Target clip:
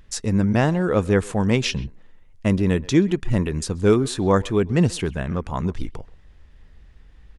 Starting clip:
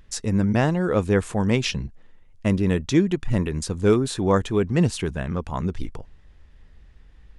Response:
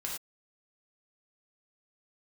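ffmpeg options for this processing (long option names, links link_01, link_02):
-filter_complex "[0:a]asplit=2[link_01][link_02];[link_02]adelay=130,highpass=300,lowpass=3400,asoftclip=type=hard:threshold=-15.5dB,volume=-20dB[link_03];[link_01][link_03]amix=inputs=2:normalize=0,volume=1.5dB"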